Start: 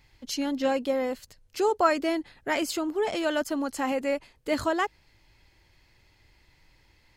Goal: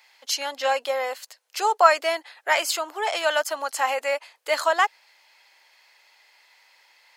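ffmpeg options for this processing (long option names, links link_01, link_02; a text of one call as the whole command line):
ffmpeg -i in.wav -af "highpass=frequency=640:width=0.5412,highpass=frequency=640:width=1.3066,volume=8dB" out.wav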